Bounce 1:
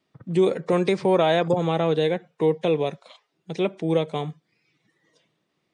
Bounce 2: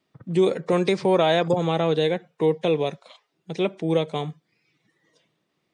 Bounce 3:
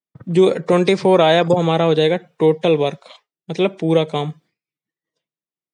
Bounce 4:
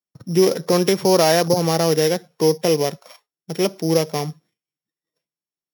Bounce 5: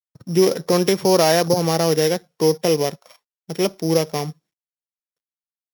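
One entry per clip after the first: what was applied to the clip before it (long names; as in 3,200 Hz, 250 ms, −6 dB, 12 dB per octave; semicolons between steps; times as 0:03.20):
dynamic equaliser 5,100 Hz, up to +4 dB, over −43 dBFS, Q 0.93
downward expander −49 dBFS; level +6.5 dB
samples sorted by size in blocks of 8 samples; level −2.5 dB
mu-law and A-law mismatch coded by A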